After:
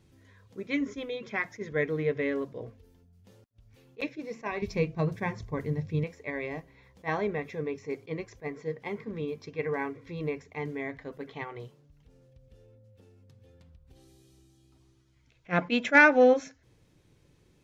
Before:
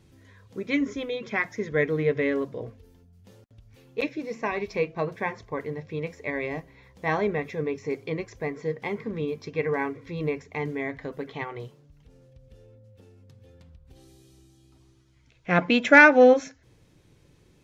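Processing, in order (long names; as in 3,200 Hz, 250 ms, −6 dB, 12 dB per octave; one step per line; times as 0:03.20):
0:04.62–0:06.04: bass and treble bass +14 dB, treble +7 dB
level that may rise only so fast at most 420 dB per second
level −4.5 dB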